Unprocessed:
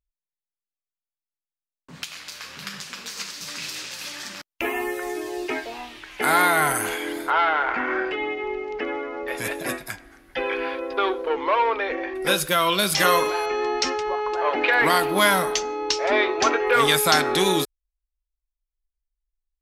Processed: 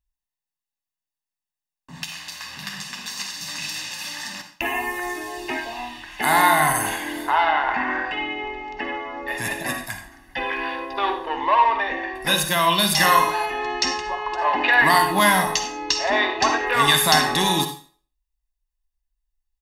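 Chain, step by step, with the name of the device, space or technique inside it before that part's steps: microphone above a desk (comb 1.1 ms, depth 72%; reverb RT60 0.40 s, pre-delay 45 ms, DRR 6 dB)

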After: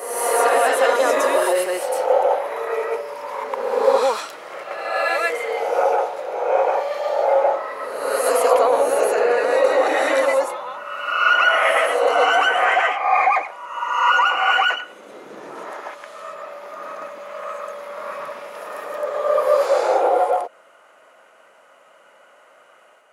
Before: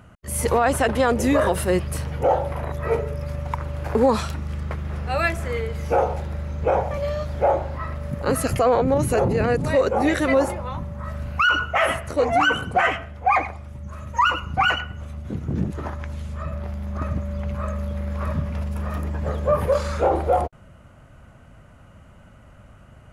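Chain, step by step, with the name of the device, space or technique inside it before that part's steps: ghost voice (reverse; reverb RT60 1.4 s, pre-delay 0.1 s, DRR -3 dB; reverse; HPF 450 Hz 24 dB/oct)

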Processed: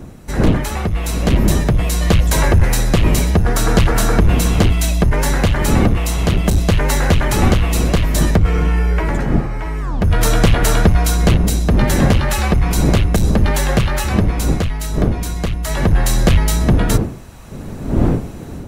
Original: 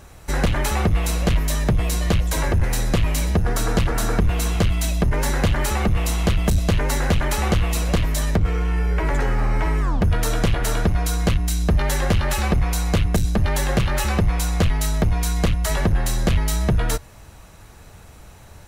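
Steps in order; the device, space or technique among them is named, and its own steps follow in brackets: smartphone video outdoors (wind noise 230 Hz -24 dBFS; AGC; gain -1 dB; AAC 128 kbps 48000 Hz)

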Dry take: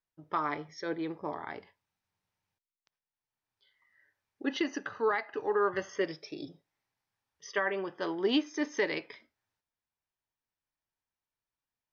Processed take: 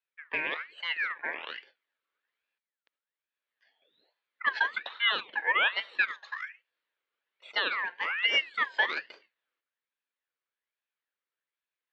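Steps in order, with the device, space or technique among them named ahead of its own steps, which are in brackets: voice changer toy (ring modulator with a swept carrier 1900 Hz, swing 35%, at 1.2 Hz; speaker cabinet 450–3900 Hz, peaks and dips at 500 Hz +3 dB, 740 Hz -6 dB, 1700 Hz +6 dB); gain +3.5 dB

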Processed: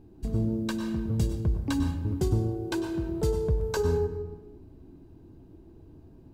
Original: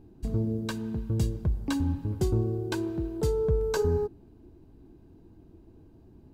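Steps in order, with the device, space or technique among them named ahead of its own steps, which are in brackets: compressed reverb return (on a send at -3 dB: reverb RT60 0.85 s, pre-delay 95 ms + compressor, threshold -27 dBFS, peak gain reduction 9 dB)

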